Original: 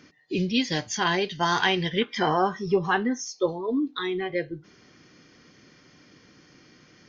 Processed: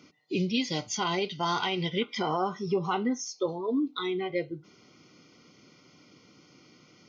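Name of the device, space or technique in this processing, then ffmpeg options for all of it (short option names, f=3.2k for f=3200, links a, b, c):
PA system with an anti-feedback notch: -filter_complex "[0:a]asettb=1/sr,asplit=3[a][b][c];[a]atrim=end=1.214[d];[b]atrim=start=1.21:end=1.92,asetpts=PTS-STARTPTS,afade=t=in:d=0.004:c=qsin,afade=t=out:st=0.706:d=0.004:c=qsin,lowpass=f=5.9k:w=0.5412,lowpass=f=5.9k:w=1.3066[e];[c]atrim=start=1.916[f];[d][e]acrossfade=d=0.004:c1=hsin:c2=qsin[g];[g][f]acrossfade=d=0.004:c1=qsin:c2=hsin,highpass=100,asuperstop=centerf=1700:order=8:qfactor=3.8,alimiter=limit=-16dB:level=0:latency=1:release=77,volume=-2dB"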